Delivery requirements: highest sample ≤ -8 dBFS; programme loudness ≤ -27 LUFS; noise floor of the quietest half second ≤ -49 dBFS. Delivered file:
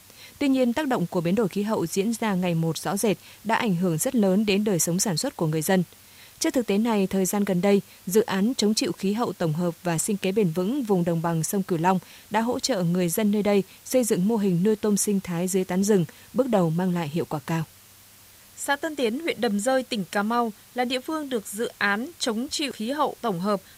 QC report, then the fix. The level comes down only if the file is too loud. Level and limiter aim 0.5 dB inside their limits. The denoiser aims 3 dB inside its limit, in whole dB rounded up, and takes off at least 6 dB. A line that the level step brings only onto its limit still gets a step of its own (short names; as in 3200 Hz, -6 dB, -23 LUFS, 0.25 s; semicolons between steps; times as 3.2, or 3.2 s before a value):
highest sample -7.5 dBFS: fail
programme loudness -24.5 LUFS: fail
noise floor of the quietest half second -51 dBFS: OK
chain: gain -3 dB